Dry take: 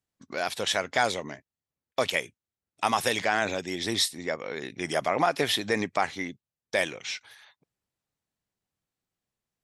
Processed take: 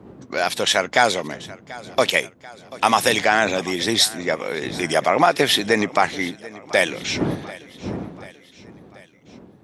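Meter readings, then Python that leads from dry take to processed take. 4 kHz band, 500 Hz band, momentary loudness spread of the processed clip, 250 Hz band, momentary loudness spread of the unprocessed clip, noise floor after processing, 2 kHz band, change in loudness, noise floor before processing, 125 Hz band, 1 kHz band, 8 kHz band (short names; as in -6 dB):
+8.5 dB, +8.5 dB, 17 LU, +9.5 dB, 11 LU, -50 dBFS, +8.5 dB, +8.5 dB, under -85 dBFS, +9.5 dB, +8.5 dB, +8.5 dB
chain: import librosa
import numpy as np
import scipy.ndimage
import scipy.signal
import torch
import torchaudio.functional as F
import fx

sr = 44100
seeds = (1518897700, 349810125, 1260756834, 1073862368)

p1 = fx.dmg_wind(x, sr, seeds[0], corner_hz=290.0, level_db=-43.0)
p2 = scipy.signal.sosfilt(scipy.signal.butter(2, 120.0, 'highpass', fs=sr, output='sos'), p1)
p3 = p2 + fx.echo_feedback(p2, sr, ms=737, feedback_pct=55, wet_db=-19.5, dry=0)
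y = F.gain(torch.from_numpy(p3), 8.5).numpy()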